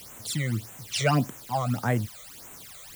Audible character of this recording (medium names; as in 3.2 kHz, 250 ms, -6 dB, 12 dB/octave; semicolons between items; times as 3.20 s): a quantiser's noise floor 8-bit, dither triangular; phasing stages 12, 1.7 Hz, lowest notch 270–4800 Hz